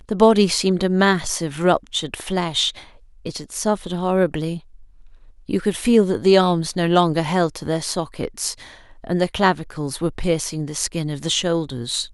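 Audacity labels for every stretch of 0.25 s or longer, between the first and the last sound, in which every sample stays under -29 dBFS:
2.790000	3.260000	silence
4.580000	5.490000	silence
8.630000	9.040000	silence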